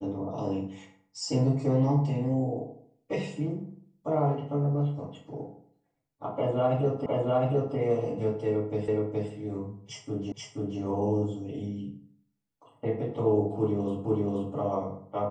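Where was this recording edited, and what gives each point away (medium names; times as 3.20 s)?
7.06 s: repeat of the last 0.71 s
8.88 s: repeat of the last 0.42 s
10.32 s: repeat of the last 0.48 s
14.05 s: repeat of the last 0.48 s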